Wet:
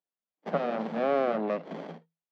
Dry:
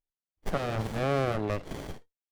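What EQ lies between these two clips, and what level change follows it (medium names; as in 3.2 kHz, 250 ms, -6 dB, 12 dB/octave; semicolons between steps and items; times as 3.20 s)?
rippled Chebyshev high-pass 160 Hz, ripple 6 dB; distance through air 230 m; +5.0 dB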